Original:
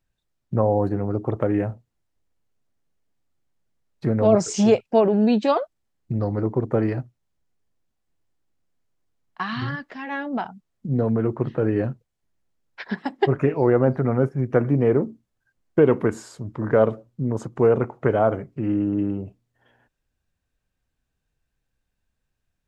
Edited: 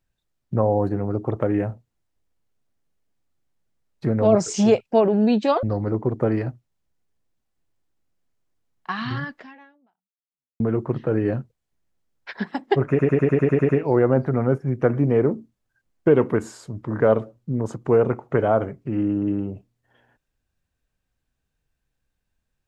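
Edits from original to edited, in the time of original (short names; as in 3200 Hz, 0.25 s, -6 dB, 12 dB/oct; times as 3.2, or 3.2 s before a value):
5.63–6.14 cut
9.89–11.11 fade out exponential
13.4 stutter 0.10 s, 9 plays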